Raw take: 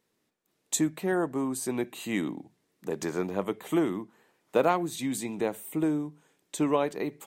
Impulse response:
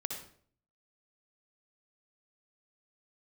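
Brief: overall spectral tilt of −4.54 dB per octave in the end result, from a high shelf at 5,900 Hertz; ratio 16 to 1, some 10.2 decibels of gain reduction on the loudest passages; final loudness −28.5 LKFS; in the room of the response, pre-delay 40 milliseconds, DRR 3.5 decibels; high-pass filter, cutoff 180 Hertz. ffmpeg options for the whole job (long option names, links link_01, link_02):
-filter_complex "[0:a]highpass=180,highshelf=frequency=5900:gain=-6.5,acompressor=threshold=-28dB:ratio=16,asplit=2[link_01][link_02];[1:a]atrim=start_sample=2205,adelay=40[link_03];[link_02][link_03]afir=irnorm=-1:irlink=0,volume=-4.5dB[link_04];[link_01][link_04]amix=inputs=2:normalize=0,volume=5dB"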